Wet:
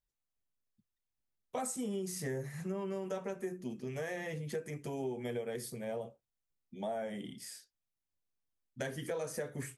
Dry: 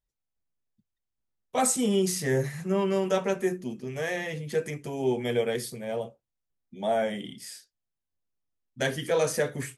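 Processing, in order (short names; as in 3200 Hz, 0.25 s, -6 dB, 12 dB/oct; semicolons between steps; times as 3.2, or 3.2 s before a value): dynamic EQ 3400 Hz, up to -6 dB, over -48 dBFS, Q 0.92; compressor, threshold -31 dBFS, peak gain reduction 10.5 dB; gain -4 dB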